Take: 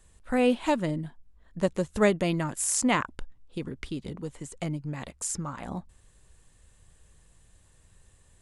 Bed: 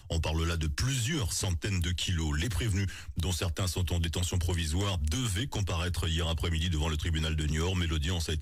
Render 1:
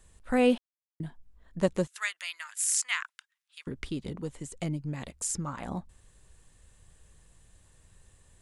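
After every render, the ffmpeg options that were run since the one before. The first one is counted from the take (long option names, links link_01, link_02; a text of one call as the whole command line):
ffmpeg -i in.wav -filter_complex "[0:a]asettb=1/sr,asplit=3[link_01][link_02][link_03];[link_01]atrim=end=1.874[link_04];[link_02]atrim=start=1.87:end=3.67,asetpts=PTS-STARTPTS,afade=type=in:duration=0.004:curve=qsin,afade=type=out:start_time=1.796:duration=0.004:curve=qsin,highpass=frequency=1500:width=0.5412,highpass=frequency=1500:width=1.3066[link_05];[link_03]atrim=start=3.666[link_06];[link_04][link_05]acrossfade=duration=0.004:curve1=hsin:curve2=qsin[link_07];[link_07][link_06]acrossfade=duration=0.004:curve1=qsin:curve2=hsin,asettb=1/sr,asplit=3[link_08][link_09][link_10];[link_08]atrim=end=4.354[link_11];[link_09]atrim=start=4.35:end=5.47,asetpts=PTS-STARTPTS,afade=type=in:duration=0.004:curve=qsin,afade=type=out:start_time=1.116:duration=0.004:curve=qsin,equalizer=frequency=1100:width=0.76:gain=-4.5[link_12];[link_10]atrim=start=5.466[link_13];[link_11][link_12]acrossfade=duration=0.004:curve1=hsin:curve2=qsin[link_14];[link_14][link_13]acrossfade=duration=0.004:curve1=qsin:curve2=hsin,asplit=3[link_15][link_16][link_17];[link_15]atrim=end=0.58,asetpts=PTS-STARTPTS,afade=type=out:start_time=0.576:duration=0.004:curve=hsin[link_18];[link_16]atrim=start=0.58:end=1,asetpts=PTS-STARTPTS,volume=0[link_19];[link_17]atrim=start=1,asetpts=PTS-STARTPTS,afade=type=in:duration=0.004:curve=hsin[link_20];[link_18][link_19][link_20]concat=n=3:v=0:a=1" out.wav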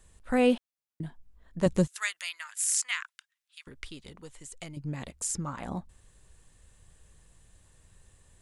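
ffmpeg -i in.wav -filter_complex "[0:a]asettb=1/sr,asplit=3[link_01][link_02][link_03];[link_01]atrim=end=1.664[link_04];[link_02]atrim=start=1.66:end=2.29,asetpts=PTS-STARTPTS,afade=type=in:duration=0.004:curve=qsin,afade=type=out:start_time=0.626:duration=0.004:curve=qsin,bass=frequency=250:gain=9,treble=frequency=4000:gain=5[link_05];[link_03]atrim=start=2.286[link_06];[link_04][link_05]acrossfade=duration=0.004:curve1=hsin:curve2=qsin[link_07];[link_07][link_06]acrossfade=duration=0.004:curve1=qsin:curve2=hsin,asettb=1/sr,asplit=3[link_08][link_09][link_10];[link_08]atrim=end=2.914[link_11];[link_09]atrim=start=2.91:end=4.77,asetpts=PTS-STARTPTS,afade=type=in:duration=0.004:curve=qsin,afade=type=out:start_time=1.856:duration=0.004:curve=qsin,equalizer=frequency=200:width=0.3:gain=-13.5[link_12];[link_10]atrim=start=4.766[link_13];[link_11][link_12]acrossfade=duration=0.004:curve1=hsin:curve2=qsin[link_14];[link_14][link_13]acrossfade=duration=0.004:curve1=qsin:curve2=hsin" out.wav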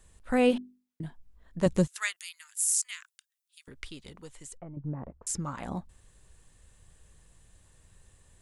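ffmpeg -i in.wav -filter_complex "[0:a]asettb=1/sr,asplit=3[link_01][link_02][link_03];[link_01]atrim=end=0.494[link_04];[link_02]atrim=start=0.49:end=1.04,asetpts=PTS-STARTPTS,afade=type=in:duration=0.004:curve=qsin,afade=type=out:start_time=0.546:duration=0.004:curve=qsin,bandreject=frequency=50:width_type=h:width=6,bandreject=frequency=100:width_type=h:width=6,bandreject=frequency=150:width_type=h:width=6,bandreject=frequency=200:width_type=h:width=6,bandreject=frequency=250:width_type=h:width=6,bandreject=frequency=300:width_type=h:width=6,bandreject=frequency=350:width_type=h:width=6,bandreject=frequency=400:width_type=h:width=6[link_05];[link_03]atrim=start=1.036[link_06];[link_04][link_05]acrossfade=duration=0.004:curve1=hsin:curve2=qsin[link_07];[link_07][link_06]acrossfade=duration=0.004:curve1=qsin:curve2=hsin,asettb=1/sr,asplit=3[link_08][link_09][link_10];[link_08]atrim=end=2.164[link_11];[link_09]atrim=start=2.16:end=3.68,asetpts=PTS-STARTPTS,afade=type=in:duration=0.004:curve=qsin,afade=type=out:start_time=1.516:duration=0.004:curve=qsin,aderivative[link_12];[link_10]atrim=start=3.676[link_13];[link_11][link_12]acrossfade=duration=0.004:curve1=hsin:curve2=qsin[link_14];[link_14][link_13]acrossfade=duration=0.004:curve1=qsin:curve2=hsin,asettb=1/sr,asplit=3[link_15][link_16][link_17];[link_15]atrim=end=4.574[link_18];[link_16]atrim=start=4.57:end=5.27,asetpts=PTS-STARTPTS,afade=type=in:duration=0.004:curve=qsin,afade=type=out:start_time=0.696:duration=0.004:curve=qsin,lowpass=frequency=1200:width=0.5412,lowpass=frequency=1200:width=1.3066[link_19];[link_17]atrim=start=5.266[link_20];[link_18][link_19]acrossfade=duration=0.004:curve1=hsin:curve2=qsin[link_21];[link_21][link_20]acrossfade=duration=0.004:curve1=qsin:curve2=hsin" out.wav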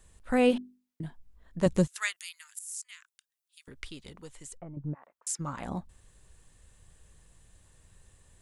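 ffmpeg -i in.wav -filter_complex "[0:a]asplit=3[link_01][link_02][link_03];[link_01]afade=type=out:start_time=4.93:duration=0.02[link_04];[link_02]highpass=1300,afade=type=in:start_time=4.93:duration=0.02,afade=type=out:start_time=5.39:duration=0.02[link_05];[link_03]afade=type=in:start_time=5.39:duration=0.02[link_06];[link_04][link_05][link_06]amix=inputs=3:normalize=0,asplit=2[link_07][link_08];[link_07]atrim=end=2.59,asetpts=PTS-STARTPTS,afade=type=out:start_time=2.586:duration=0.004:curve=hsin:silence=0.105925[link_09];[link_08]atrim=start=2.59,asetpts=PTS-STARTPTS,afade=type=in:duration=1.11:silence=0.105925[link_10];[link_09][link_10]concat=n=2:v=0:a=1" out.wav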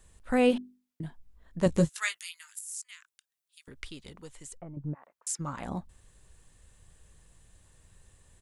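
ffmpeg -i in.wav -filter_complex "[0:a]asplit=3[link_01][link_02][link_03];[link_01]afade=type=out:start_time=1.68:duration=0.02[link_04];[link_02]asplit=2[link_05][link_06];[link_06]adelay=18,volume=-6.5dB[link_07];[link_05][link_07]amix=inputs=2:normalize=0,afade=type=in:start_time=1.68:duration=0.02,afade=type=out:start_time=2.63:duration=0.02[link_08];[link_03]afade=type=in:start_time=2.63:duration=0.02[link_09];[link_04][link_08][link_09]amix=inputs=3:normalize=0" out.wav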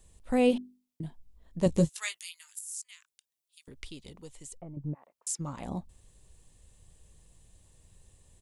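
ffmpeg -i in.wav -af "equalizer=frequency=1500:width_type=o:width=0.93:gain=-10" out.wav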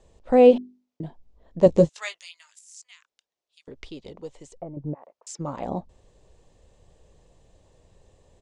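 ffmpeg -i in.wav -af "lowpass=frequency=6600:width=0.5412,lowpass=frequency=6600:width=1.3066,equalizer=frequency=560:width_type=o:width=2:gain=13" out.wav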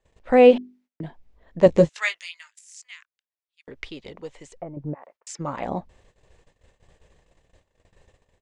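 ffmpeg -i in.wav -af "agate=range=-18dB:threshold=-55dB:ratio=16:detection=peak,equalizer=frequency=1900:width=0.98:gain=11" out.wav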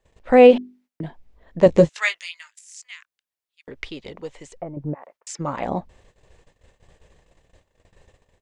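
ffmpeg -i in.wav -af "volume=3dB,alimiter=limit=-2dB:level=0:latency=1" out.wav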